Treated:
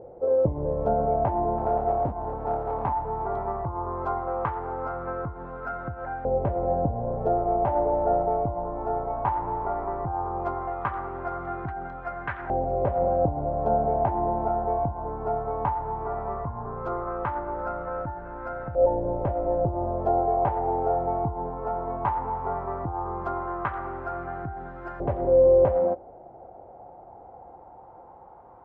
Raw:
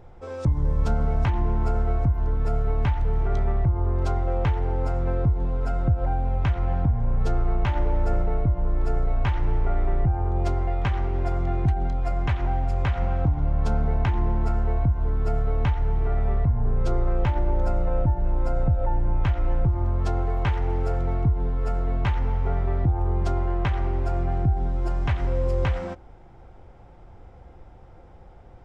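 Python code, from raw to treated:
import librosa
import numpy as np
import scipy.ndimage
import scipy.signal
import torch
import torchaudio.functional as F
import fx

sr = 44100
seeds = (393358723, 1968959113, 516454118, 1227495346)

y = fx.tilt_shelf(x, sr, db=9.5, hz=1200.0)
y = fx.overload_stage(y, sr, gain_db=8.5, at=(1.58, 2.99))
y = fx.filter_lfo_bandpass(y, sr, shape='saw_up', hz=0.16, low_hz=530.0, high_hz=1600.0, q=3.3)
y = F.gain(torch.from_numpy(y), 9.0).numpy()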